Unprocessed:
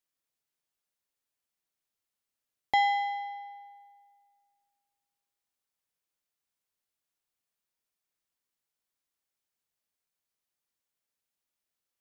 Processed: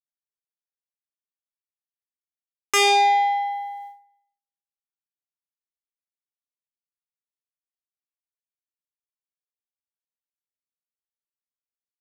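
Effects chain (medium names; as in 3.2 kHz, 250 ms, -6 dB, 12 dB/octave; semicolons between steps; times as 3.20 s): gate -57 dBFS, range -48 dB; feedback delay 141 ms, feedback 37%, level -22.5 dB; sine folder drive 13 dB, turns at -14.5 dBFS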